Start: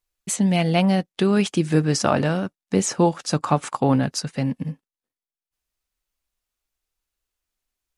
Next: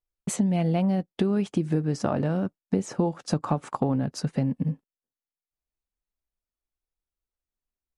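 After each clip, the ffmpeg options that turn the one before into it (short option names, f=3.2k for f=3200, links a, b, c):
-af "tiltshelf=f=1.2k:g=7,acompressor=threshold=-22dB:ratio=6,agate=range=-12dB:threshold=-40dB:ratio=16:detection=peak"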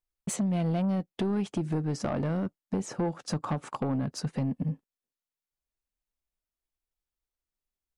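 -af "asoftclip=type=tanh:threshold=-21dB,volume=-1.5dB"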